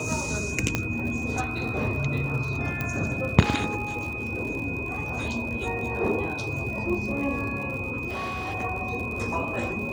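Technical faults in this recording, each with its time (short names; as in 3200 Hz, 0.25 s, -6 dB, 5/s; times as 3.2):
crackle 92/s -34 dBFS
tone 2500 Hz -32 dBFS
0.75 pop -9 dBFS
2.81 pop -14 dBFS
8.08–8.55 clipped -27.5 dBFS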